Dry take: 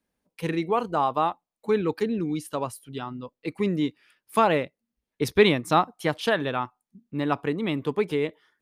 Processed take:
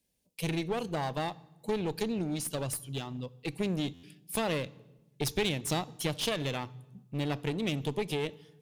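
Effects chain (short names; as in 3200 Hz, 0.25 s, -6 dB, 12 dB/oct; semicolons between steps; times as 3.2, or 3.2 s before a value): EQ curve 140 Hz 0 dB, 250 Hz -6 dB, 560 Hz -4 dB, 1300 Hz -15 dB, 2700 Hz +1 dB, 7400 Hz +6 dB; compressor 3:1, threshold -28 dBFS, peak gain reduction 9.5 dB; one-sided clip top -35.5 dBFS; on a send at -20 dB: reverb RT60 1.0 s, pre-delay 3 ms; on the sum: stuck buffer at 3.93, samples 512, times 8; gain +2 dB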